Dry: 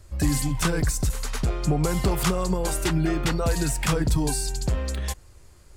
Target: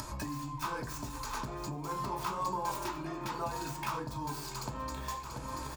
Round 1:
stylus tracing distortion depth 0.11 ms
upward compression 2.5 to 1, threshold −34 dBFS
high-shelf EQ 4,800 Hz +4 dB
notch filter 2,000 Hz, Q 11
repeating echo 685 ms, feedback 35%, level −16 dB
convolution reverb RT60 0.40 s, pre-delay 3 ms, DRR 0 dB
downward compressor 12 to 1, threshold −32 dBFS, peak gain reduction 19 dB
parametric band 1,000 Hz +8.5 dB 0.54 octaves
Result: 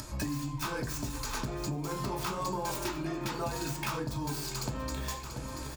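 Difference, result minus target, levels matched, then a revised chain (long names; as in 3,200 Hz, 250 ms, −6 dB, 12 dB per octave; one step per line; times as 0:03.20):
downward compressor: peak gain reduction −5.5 dB; 1,000 Hz band −4.5 dB
stylus tracing distortion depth 0.11 ms
upward compression 2.5 to 1, threshold −34 dBFS
high-shelf EQ 4,800 Hz +4 dB
notch filter 2,000 Hz, Q 11
repeating echo 685 ms, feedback 35%, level −16 dB
convolution reverb RT60 0.40 s, pre-delay 3 ms, DRR 0 dB
downward compressor 12 to 1, threshold −38 dBFS, peak gain reduction 24.5 dB
parametric band 1,000 Hz +19 dB 0.54 octaves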